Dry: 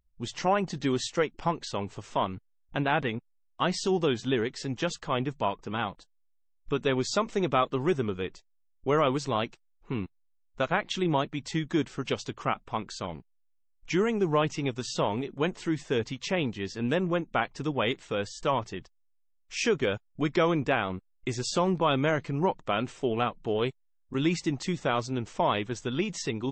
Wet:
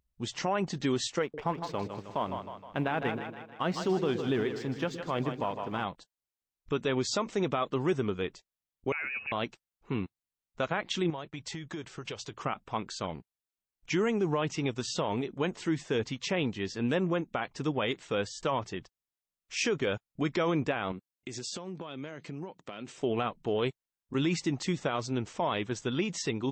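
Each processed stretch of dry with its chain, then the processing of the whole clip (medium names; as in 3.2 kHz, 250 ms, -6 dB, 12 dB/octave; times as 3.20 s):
1.22–5.84 s: companding laws mixed up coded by A + treble shelf 4.1 kHz -11.5 dB + two-band feedback delay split 430 Hz, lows 116 ms, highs 156 ms, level -9 dB
8.92–9.32 s: compression 10:1, threshold -31 dBFS + frequency inversion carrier 2.7 kHz
11.10–12.33 s: peaking EQ 240 Hz -8.5 dB 0.57 oct + compression 8:1, threshold -34 dBFS + expander -47 dBFS
20.92–22.98 s: high-pass 160 Hz + compression 10:1, threshold -33 dBFS + peaking EQ 980 Hz -6 dB 2.1 oct
whole clip: high-pass 69 Hz 6 dB/octave; peak limiter -19.5 dBFS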